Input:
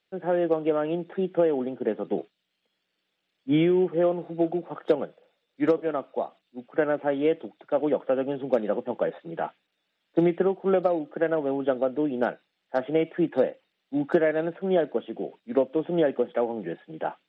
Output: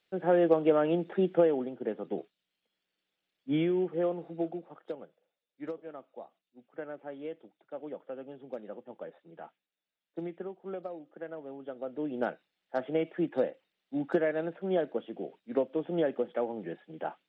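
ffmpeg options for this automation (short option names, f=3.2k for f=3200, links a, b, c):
-af "volume=10.5dB,afade=t=out:st=1.28:d=0.42:silence=0.446684,afade=t=out:st=4.33:d=0.48:silence=0.334965,afade=t=in:st=11.74:d=0.46:silence=0.298538"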